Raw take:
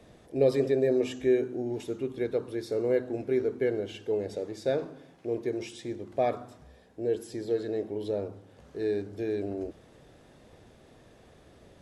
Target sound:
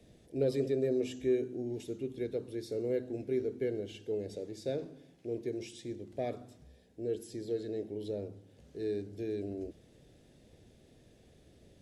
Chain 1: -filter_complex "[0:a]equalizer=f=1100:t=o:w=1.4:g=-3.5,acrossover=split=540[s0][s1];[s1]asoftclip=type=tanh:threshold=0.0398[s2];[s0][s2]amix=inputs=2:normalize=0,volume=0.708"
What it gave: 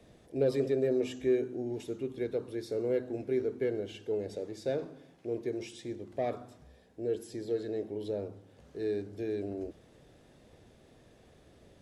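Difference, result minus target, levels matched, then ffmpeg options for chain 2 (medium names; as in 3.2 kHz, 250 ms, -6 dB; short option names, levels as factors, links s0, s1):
1 kHz band +3.0 dB
-filter_complex "[0:a]equalizer=f=1100:t=o:w=1.4:g=-14.5,acrossover=split=540[s0][s1];[s1]asoftclip=type=tanh:threshold=0.0398[s2];[s0][s2]amix=inputs=2:normalize=0,volume=0.708"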